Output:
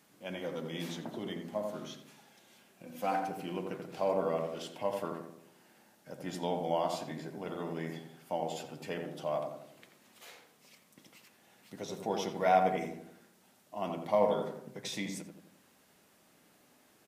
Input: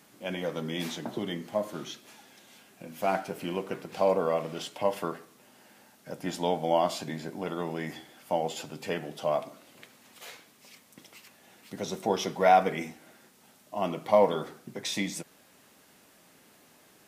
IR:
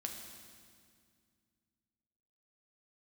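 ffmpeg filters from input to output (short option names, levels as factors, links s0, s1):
-filter_complex "[0:a]asettb=1/sr,asplit=3[s0][s1][s2];[s0]atrim=end=2.864[s3];[s1]atrim=start=2.86:end=3.28,asetpts=PTS-STARTPTS,afade=t=in:d=0.004:c=qsin,afade=t=out:st=0.416:d=0.004:c=qsin,aecho=1:1:3.9:0.69,atrim=end_sample=18522[s4];[s2]atrim=start=3.276[s5];[s3][s4]acrossfade=d=0.004:c1=hsin:c2=qsin[s6];[s6][s5]acrossfade=d=0.004:c1=qsin:c2=hsin,asplit=2[s7][s8];[s8]adelay=86,lowpass=f=1100:p=1,volume=0.708,asplit=2[s9][s10];[s10]adelay=86,lowpass=f=1100:p=1,volume=0.52,asplit=2[s11][s12];[s12]adelay=86,lowpass=f=1100:p=1,volume=0.52,asplit=2[s13][s14];[s14]adelay=86,lowpass=f=1100:p=1,volume=0.52,asplit=2[s15][s16];[s16]adelay=86,lowpass=f=1100:p=1,volume=0.52,asplit=2[s17][s18];[s18]adelay=86,lowpass=f=1100:p=1,volume=0.52,asplit=2[s19][s20];[s20]adelay=86,lowpass=f=1100:p=1,volume=0.52[s21];[s9][s11][s13][s15][s17][s19][s21]amix=inputs=7:normalize=0[s22];[s7][s22]amix=inputs=2:normalize=0,volume=0.447"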